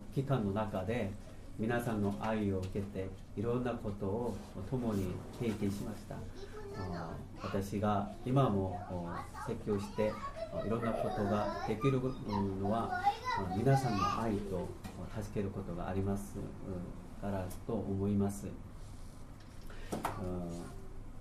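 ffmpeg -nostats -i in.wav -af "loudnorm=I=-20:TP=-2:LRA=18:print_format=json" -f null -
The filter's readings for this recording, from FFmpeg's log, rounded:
"input_i" : "-37.2",
"input_tp" : "-17.2",
"input_lra" : "9.2",
"input_thresh" : "-47.8",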